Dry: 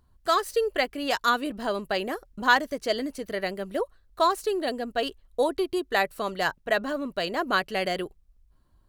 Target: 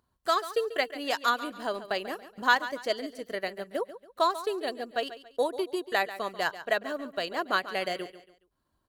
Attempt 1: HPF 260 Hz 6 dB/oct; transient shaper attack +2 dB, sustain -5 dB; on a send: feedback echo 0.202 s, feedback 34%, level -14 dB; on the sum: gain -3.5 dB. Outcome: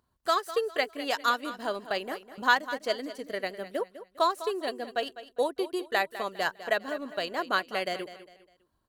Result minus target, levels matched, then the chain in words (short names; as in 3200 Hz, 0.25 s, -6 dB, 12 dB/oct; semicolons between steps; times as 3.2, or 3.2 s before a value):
echo 62 ms late
HPF 260 Hz 6 dB/oct; transient shaper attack +2 dB, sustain -5 dB; on a send: feedback echo 0.14 s, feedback 34%, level -14 dB; on the sum: gain -3.5 dB